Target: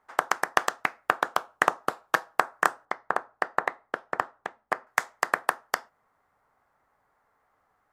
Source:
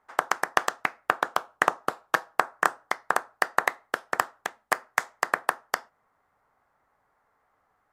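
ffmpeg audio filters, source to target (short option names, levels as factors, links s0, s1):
-filter_complex "[0:a]asettb=1/sr,asplit=3[s0][s1][s2];[s0]atrim=end=2.854[s3];[s1]atrim=start=2.85:end=4.87,asetpts=PTS-STARTPTS,afade=t=in:d=0.004:c=qsin,afade=t=out:st=2.016:d=0.004:c=qsin,lowpass=f=1300:p=1[s4];[s2]atrim=start=4.866[s5];[s3][s4]acrossfade=d=0.004:c1=hsin:c2=qsin[s6];[s6][s5]acrossfade=d=0.004:c1=qsin:c2=hsin"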